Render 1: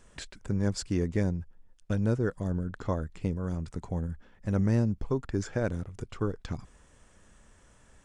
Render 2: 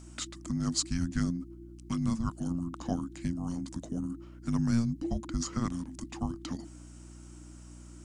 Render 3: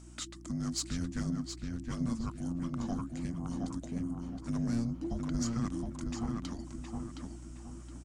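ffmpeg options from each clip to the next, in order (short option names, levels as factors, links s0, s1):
-af "afreqshift=-350,aeval=exprs='val(0)+0.00631*(sin(2*PI*60*n/s)+sin(2*PI*2*60*n/s)/2+sin(2*PI*3*60*n/s)/3+sin(2*PI*4*60*n/s)/4+sin(2*PI*5*60*n/s)/5)':c=same,bass=f=250:g=-4,treble=f=4000:g=9"
-filter_complex "[0:a]asoftclip=type=tanh:threshold=0.0668,asplit=2[s0][s1];[s1]adelay=718,lowpass=f=3300:p=1,volume=0.708,asplit=2[s2][s3];[s3]adelay=718,lowpass=f=3300:p=1,volume=0.37,asplit=2[s4][s5];[s5]adelay=718,lowpass=f=3300:p=1,volume=0.37,asplit=2[s6][s7];[s7]adelay=718,lowpass=f=3300:p=1,volume=0.37,asplit=2[s8][s9];[s9]adelay=718,lowpass=f=3300:p=1,volume=0.37[s10];[s2][s4][s6][s8][s10]amix=inputs=5:normalize=0[s11];[s0][s11]amix=inputs=2:normalize=0,volume=0.75" -ar 48000 -c:a libvorbis -b:a 64k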